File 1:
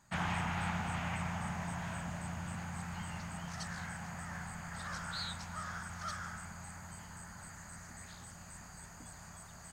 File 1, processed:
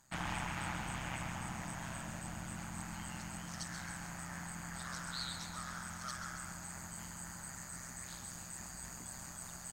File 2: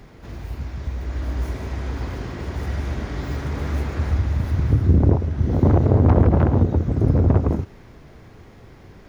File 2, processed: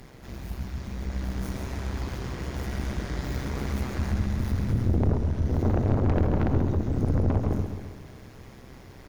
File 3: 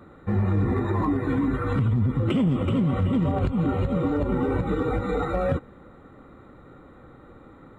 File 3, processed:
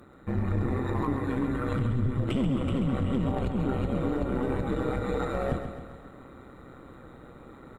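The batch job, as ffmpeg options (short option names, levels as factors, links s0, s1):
-af "aemphasis=mode=production:type=cd,areverse,acompressor=mode=upward:threshold=0.0141:ratio=2.5,areverse,aeval=exprs='(tanh(6.31*val(0)+0.35)-tanh(0.35))/6.31':c=same,tremolo=f=130:d=0.75,aecho=1:1:134|268|402|536|670|804|938:0.376|0.207|0.114|0.0625|0.0344|0.0189|0.0104"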